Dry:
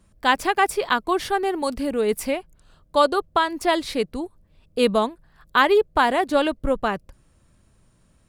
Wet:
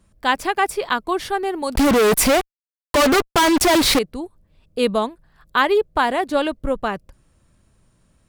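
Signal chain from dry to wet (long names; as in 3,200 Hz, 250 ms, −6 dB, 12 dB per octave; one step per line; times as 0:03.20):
0:01.75–0:03.99: fuzz pedal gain 41 dB, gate −40 dBFS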